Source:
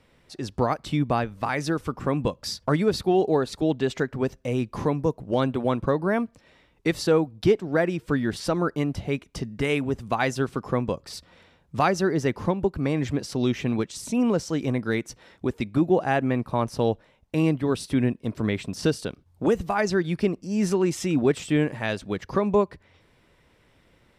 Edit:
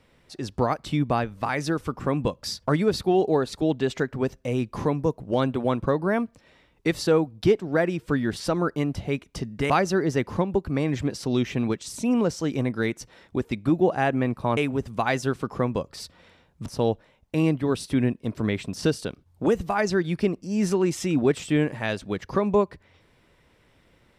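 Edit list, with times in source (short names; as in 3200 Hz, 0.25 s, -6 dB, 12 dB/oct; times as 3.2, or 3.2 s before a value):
9.7–11.79 move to 16.66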